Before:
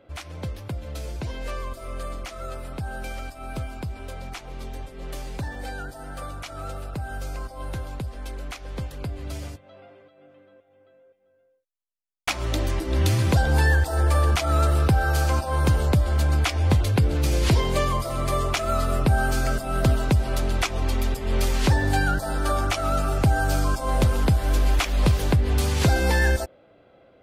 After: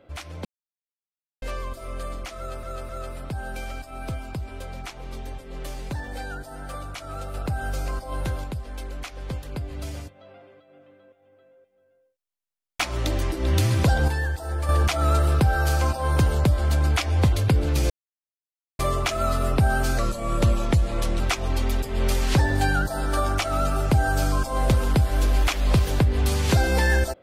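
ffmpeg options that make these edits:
-filter_complex "[0:a]asplit=13[a][b][c][d][e][f][g][h][i][j][k][l][m];[a]atrim=end=0.45,asetpts=PTS-STARTPTS,afade=t=out:st=0.446:d=0.004:c=hsin[n];[b]atrim=start=0.45:end=1.42,asetpts=PTS-STARTPTS,volume=0[o];[c]atrim=start=1.42:end=2.632,asetpts=PTS-STARTPTS,afade=t=in:d=0.004:c=hsin[p];[d]atrim=start=2.368:end=2.632[q];[e]atrim=start=2.368:end=6.822[r];[f]atrim=start=6.818:end=7.922,asetpts=PTS-STARTPTS,volume=4dB[s];[g]atrim=start=7.918:end=13.562[t];[h]atrim=start=13.558:end=14.172,asetpts=PTS-STARTPTS,volume=-7dB[u];[i]atrim=start=14.168:end=17.38,asetpts=PTS-STARTPTS,afade=t=out:st=3.208:d=0.004:c=hsin[v];[j]atrim=start=17.38:end=18.27,asetpts=PTS-STARTPTS,volume=0[w];[k]atrim=start=18.27:end=19.464,asetpts=PTS-STARTPTS,afade=t=in:d=0.004:c=hsin[x];[l]atrim=start=19.46:end=20.52,asetpts=PTS-STARTPTS,asetrate=38367,aresample=44100,atrim=end_sample=53731,asetpts=PTS-STARTPTS[y];[m]atrim=start=20.516[z];[n][o][p]concat=n=3:v=0:a=1[aa];[aa][q]acrossfade=d=0.004:c1=hsin:c2=hsin[ab];[ab][r]acrossfade=d=0.004:c1=hsin:c2=hsin[ac];[ac][s]acrossfade=d=0.004:c1=hsin:c2=hsin[ad];[ad][t]acrossfade=d=0.004:c1=hsin:c2=hsin[ae];[ae][u]acrossfade=d=0.004:c1=hsin:c2=hsin[af];[v][w][x]concat=n=3:v=0:a=1[ag];[af][ag]acrossfade=d=0.004:c1=hsin:c2=hsin[ah];[ah][y]acrossfade=d=0.004:c1=hsin:c2=hsin[ai];[ai][z]acrossfade=d=0.004:c1=hsin:c2=hsin"

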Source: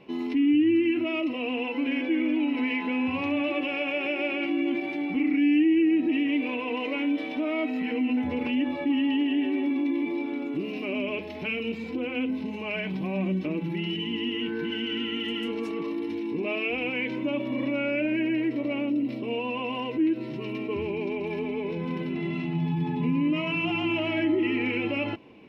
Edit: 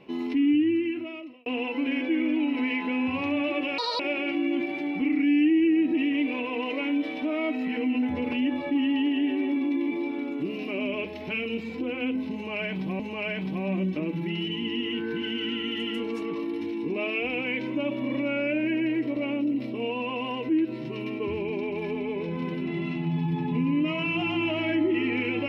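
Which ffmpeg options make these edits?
-filter_complex "[0:a]asplit=5[a][b][c][d][e];[a]atrim=end=1.46,asetpts=PTS-STARTPTS,afade=t=out:st=0.48:d=0.98[f];[b]atrim=start=1.46:end=3.784,asetpts=PTS-STARTPTS,afade=t=in:d=0.004:c=hsin[g];[c]atrim=start=3.78:end=4.14,asetpts=PTS-STARTPTS,asetrate=73647,aresample=44100[h];[d]atrim=start=4.136:end=13.142[i];[e]atrim=start=12.478[j];[f][g]concat=n=2:v=0:a=1[k];[k][h]acrossfade=d=0.004:c1=hsin:c2=hsin[l];[l][i]acrossfade=d=0.004:c1=hsin:c2=hsin[m];[m][j]acrossfade=d=0.004:c1=hsin:c2=hsin"

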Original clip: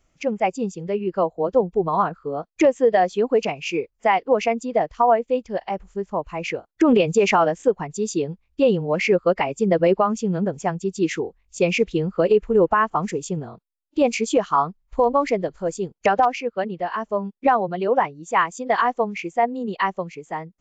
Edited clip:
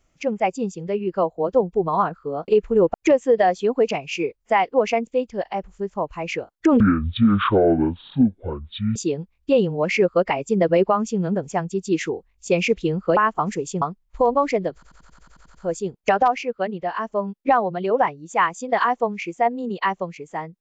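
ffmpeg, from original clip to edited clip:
-filter_complex "[0:a]asplit=17[a][b][c][d][e][f][g][h][i][j][k][l][m][n][o][p][q];[a]atrim=end=2.482[r];[b]atrim=start=12.268:end=12.732[s];[c]atrim=start=2.478:end=4.612[t];[d]atrim=start=5.228:end=6.964[u];[e]atrim=start=6.96:end=8.06,asetpts=PTS-STARTPTS,asetrate=22491,aresample=44100[v];[f]atrim=start=8.056:end=12.272[w];[g]atrim=start=12.728:end=13.382[x];[h]atrim=start=14.598:end=15.612[y];[i]atrim=start=15.518:end=15.612[z];[j]atrim=start=15.518:end=15.612[aa];[k]atrim=start=15.518:end=15.612[ab];[l]atrim=start=15.518:end=15.612[ac];[m]atrim=start=15.518:end=15.612[ad];[n]atrim=start=15.518:end=15.612[ae];[o]atrim=start=15.518:end=15.612[af];[p]atrim=start=15.518:end=15.612[ag];[q]atrim=start=15.518[ah];[r][s]acrossfade=d=0.004:c1=hsin:c2=hsin[ai];[ai][t]acrossfade=d=0.004:c1=hsin:c2=hsin[aj];[aj][u]acrossfade=d=0.004:c1=hsin:c2=hsin[ak];[ak][v]acrossfade=d=0.004:c1=hsin:c2=hsin[al];[al][w]acrossfade=d=0.004:c1=hsin:c2=hsin[am];[am][x]acrossfade=d=0.004:c1=hsin:c2=hsin[an];[an][y]acrossfade=d=0.004:c1=hsin:c2=hsin[ao];[ao][z]acrossfade=d=0.004:c1=hsin:c2=hsin[ap];[ap][aa]acrossfade=d=0.004:c1=hsin:c2=hsin[aq];[aq][ab]acrossfade=d=0.004:c1=hsin:c2=hsin[ar];[ar][ac]acrossfade=d=0.004:c1=hsin:c2=hsin[as];[as][ad]acrossfade=d=0.004:c1=hsin:c2=hsin[at];[at][ae]acrossfade=d=0.004:c1=hsin:c2=hsin[au];[au][af]acrossfade=d=0.004:c1=hsin:c2=hsin[av];[av][ag]acrossfade=d=0.004:c1=hsin:c2=hsin[aw];[aw][ah]acrossfade=d=0.004:c1=hsin:c2=hsin"

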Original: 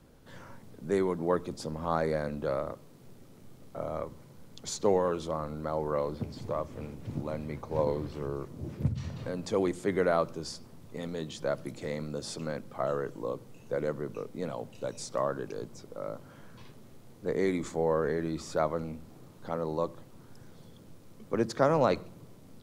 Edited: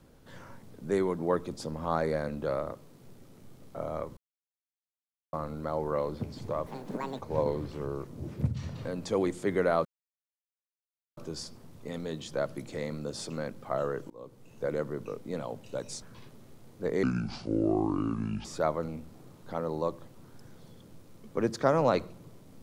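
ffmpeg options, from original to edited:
-filter_complex "[0:a]asplit=10[a][b][c][d][e][f][g][h][i][j];[a]atrim=end=4.17,asetpts=PTS-STARTPTS,afade=t=out:st=4.166:d=0.004:c=hsin[k];[b]atrim=start=4.17:end=5.33,asetpts=PTS-STARTPTS,volume=0[l];[c]atrim=start=5.33:end=6.664,asetpts=PTS-STARTPTS,afade=t=in:d=0.004:c=hsin[m];[d]atrim=start=6.66:end=7.6,asetpts=PTS-STARTPTS,asetrate=78057,aresample=44100,atrim=end_sample=23420,asetpts=PTS-STARTPTS[n];[e]atrim=start=7.596:end=10.26,asetpts=PTS-STARTPTS,afade=t=out:st=2.66:d=0.004:c=hsin,apad=pad_dur=1.32[o];[f]atrim=start=10.26:end=13.19,asetpts=PTS-STARTPTS,afade=t=in:d=0.004:c=hsin,afade=t=out:st=2.926:d=0.004:c=hsin:silence=0.0707946[p];[g]atrim=start=13.19:end=15.112,asetpts=PTS-STARTPTS,afade=t=in:d=0.53:silence=0.0707946[q];[h]atrim=start=16.448:end=17.464[r];[i]atrim=start=17.46:end=18.41,asetpts=PTS-STARTPTS,asetrate=29547,aresample=44100[s];[j]atrim=start=18.406[t];[k][l][m]concat=n=3:v=0:a=1[u];[u][n]acrossfade=d=0.004:c1=hsin:c2=hsin[v];[o][p][q]concat=n=3:v=0:a=1[w];[v][w]acrossfade=d=0.004:c1=hsin:c2=hsin[x];[x][r]acrossfade=d=0.004:c1=hsin:c2=hsin[y];[y][s]acrossfade=d=0.004:c1=hsin:c2=hsin[z];[z][t]acrossfade=d=0.004:c1=hsin:c2=hsin"

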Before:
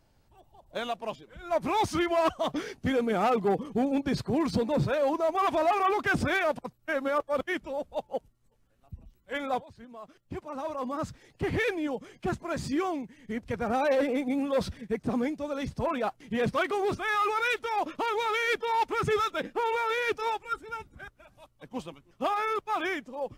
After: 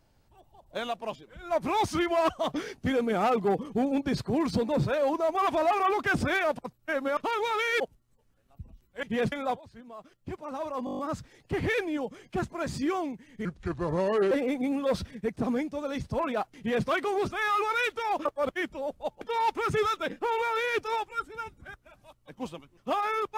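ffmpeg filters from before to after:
-filter_complex "[0:a]asplit=16[a][b][c][d][e][f][g][h][i][j][k][l][m][n][o][p];[a]atrim=end=7.172[q];[b]atrim=start=17.918:end=18.552[r];[c]atrim=start=8.128:end=9.362[s];[d]atrim=start=16.238:end=16.532[t];[e]atrim=start=9.358:end=10.912[u];[f]atrim=start=10.888:end=10.912[v];[g]atrim=start=10.888:end=10.912[w];[h]atrim=start=10.888:end=10.912[x];[i]atrim=start=10.888:end=10.912[y];[j]atrim=start=10.888:end=10.912[z];[k]atrim=start=10.888:end=10.912[aa];[l]atrim=start=10.888:end=13.354[ab];[m]atrim=start=13.35:end=13.98,asetpts=PTS-STARTPTS,asetrate=32193,aresample=44100[ac];[n]atrim=start=13.976:end=17.922[ad];[o]atrim=start=7.168:end=8.132[ae];[p]atrim=start=18.548[af];[q][r]acrossfade=d=0.004:c1=hsin:c2=hsin[ag];[ag][s]acrossfade=d=0.004:c1=hsin:c2=hsin[ah];[ah][t]acrossfade=d=0.004:c1=hsin:c2=hsin[ai];[ai][u]acrossfade=d=0.004:c1=hsin:c2=hsin[aj];[aj][v]acrossfade=d=0.004:c1=hsin:c2=hsin[ak];[ak][w]acrossfade=d=0.004:c1=hsin:c2=hsin[al];[al][x]acrossfade=d=0.004:c1=hsin:c2=hsin[am];[am][y]acrossfade=d=0.004:c1=hsin:c2=hsin[an];[an][z]acrossfade=d=0.004:c1=hsin:c2=hsin[ao];[ao][aa]acrossfade=d=0.004:c1=hsin:c2=hsin[ap];[ap][ab]acrossfade=d=0.004:c1=hsin:c2=hsin[aq];[aq][ac]acrossfade=d=0.004:c1=hsin:c2=hsin[ar];[ar][ad]acrossfade=d=0.004:c1=hsin:c2=hsin[as];[as][ae]acrossfade=d=0.004:c1=hsin:c2=hsin[at];[at][af]acrossfade=d=0.004:c1=hsin:c2=hsin"

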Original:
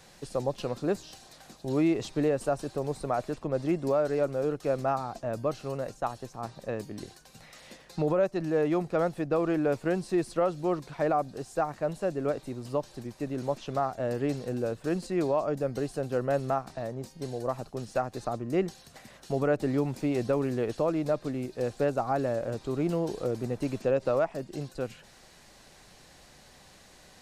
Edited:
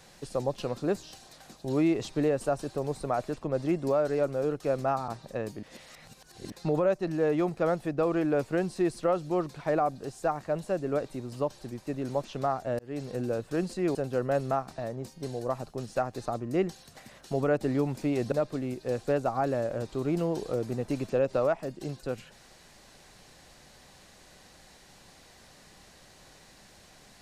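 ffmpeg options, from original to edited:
-filter_complex "[0:a]asplit=7[a][b][c][d][e][f][g];[a]atrim=end=5.082[h];[b]atrim=start=6.408:end=6.962[i];[c]atrim=start=6.958:end=7.852,asetpts=PTS-STARTPTS,areverse[j];[d]atrim=start=7.848:end=14.12,asetpts=PTS-STARTPTS,afade=t=out:st=6.268:d=0.004:c=hsin[k];[e]atrim=start=14.12:end=15.282,asetpts=PTS-STARTPTS,afade=t=in:d=0.34[l];[f]atrim=start=15.938:end=20.312[m];[g]atrim=start=21.038[n];[h][i]acrossfade=d=0.004:c1=hsin:c2=hsin[o];[o][j]acrossfade=d=0.004:c1=hsin:c2=hsin[p];[k][l]concat=n=2:v=0:a=1[q];[p][q]acrossfade=d=0.004:c1=hsin:c2=hsin[r];[r][m]acrossfade=d=0.004:c1=hsin:c2=hsin[s];[s][n]acrossfade=d=0.004:c1=hsin:c2=hsin"

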